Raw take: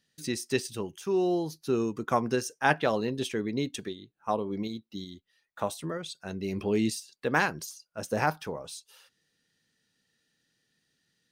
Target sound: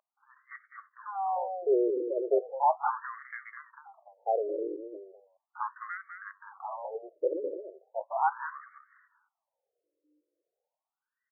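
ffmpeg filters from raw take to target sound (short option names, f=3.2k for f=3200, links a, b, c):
-filter_complex "[0:a]aeval=exprs='if(lt(val(0),0),0.447*val(0),val(0))':c=same,equalizer=f=2.8k:w=1.5:g=-11,volume=21.5dB,asoftclip=hard,volume=-21.5dB,asetrate=46722,aresample=44100,atempo=0.943874,dynaudnorm=f=120:g=13:m=8dB,aeval=exprs='val(0)+0.00562*(sin(2*PI*60*n/s)+sin(2*PI*2*60*n/s)/2+sin(2*PI*3*60*n/s)/3+sin(2*PI*4*60*n/s)/4+sin(2*PI*5*60*n/s)/5)':c=same,asubboost=boost=7:cutoff=83,asplit=2[a][b];[b]aecho=0:1:205:0.447[c];[a][c]amix=inputs=2:normalize=0,afftfilt=real='re*between(b*sr/1024,420*pow(1600/420,0.5+0.5*sin(2*PI*0.37*pts/sr))/1.41,420*pow(1600/420,0.5+0.5*sin(2*PI*0.37*pts/sr))*1.41)':imag='im*between(b*sr/1024,420*pow(1600/420,0.5+0.5*sin(2*PI*0.37*pts/sr))/1.41,420*pow(1600/420,0.5+0.5*sin(2*PI*0.37*pts/sr))*1.41)':win_size=1024:overlap=0.75"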